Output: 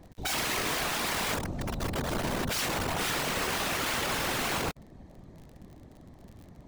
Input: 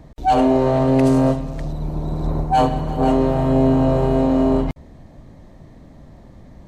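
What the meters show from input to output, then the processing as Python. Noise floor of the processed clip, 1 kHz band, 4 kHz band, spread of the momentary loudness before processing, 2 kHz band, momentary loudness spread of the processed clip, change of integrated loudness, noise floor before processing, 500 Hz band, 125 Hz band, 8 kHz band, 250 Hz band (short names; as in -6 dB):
-53 dBFS, -12.5 dB, +6.5 dB, 11 LU, +5.5 dB, 4 LU, -12.0 dB, -44 dBFS, -17.0 dB, -16.5 dB, n/a, -19.5 dB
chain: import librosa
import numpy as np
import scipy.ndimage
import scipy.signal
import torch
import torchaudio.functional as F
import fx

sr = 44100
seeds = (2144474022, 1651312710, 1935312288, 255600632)

y = (np.mod(10.0 ** (18.0 / 20.0) * x + 1.0, 2.0) - 1.0) / 10.0 ** (18.0 / 20.0)
y = fx.whisperise(y, sr, seeds[0])
y = fx.dmg_crackle(y, sr, seeds[1], per_s=42.0, level_db=-36.0)
y = y * librosa.db_to_amplitude(-7.5)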